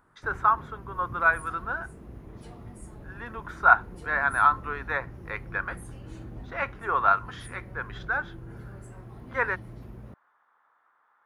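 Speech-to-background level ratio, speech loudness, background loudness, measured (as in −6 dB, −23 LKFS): 18.0 dB, −26.5 LKFS, −44.5 LKFS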